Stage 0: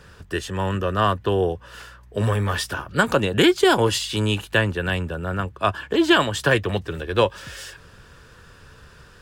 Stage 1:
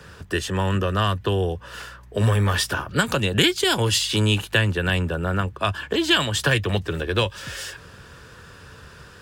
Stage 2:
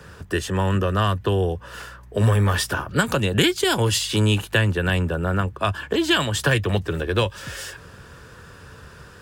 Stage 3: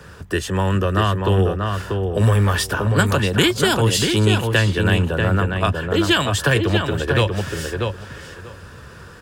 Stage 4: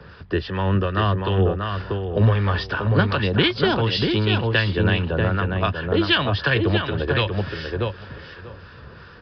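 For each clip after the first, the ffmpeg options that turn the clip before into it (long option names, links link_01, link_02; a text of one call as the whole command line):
ffmpeg -i in.wav -filter_complex "[0:a]highpass=57,acrossover=split=160|2100[link_01][link_02][link_03];[link_02]acompressor=threshold=-26dB:ratio=6[link_04];[link_01][link_04][link_03]amix=inputs=3:normalize=0,volume=4dB" out.wav
ffmpeg -i in.wav -af "equalizer=frequency=3600:width_type=o:width=1.9:gain=-4,volume=1.5dB" out.wav
ffmpeg -i in.wav -filter_complex "[0:a]asplit=2[link_01][link_02];[link_02]adelay=639,lowpass=frequency=2400:poles=1,volume=-4dB,asplit=2[link_03][link_04];[link_04]adelay=639,lowpass=frequency=2400:poles=1,volume=0.17,asplit=2[link_05][link_06];[link_06]adelay=639,lowpass=frequency=2400:poles=1,volume=0.17[link_07];[link_01][link_03][link_05][link_07]amix=inputs=4:normalize=0,volume=2dB" out.wav
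ffmpeg -i in.wav -filter_complex "[0:a]acrossover=split=1100[link_01][link_02];[link_01]aeval=exprs='val(0)*(1-0.5/2+0.5/2*cos(2*PI*2.7*n/s))':channel_layout=same[link_03];[link_02]aeval=exprs='val(0)*(1-0.5/2-0.5/2*cos(2*PI*2.7*n/s))':channel_layout=same[link_04];[link_03][link_04]amix=inputs=2:normalize=0,aresample=11025,aresample=44100" out.wav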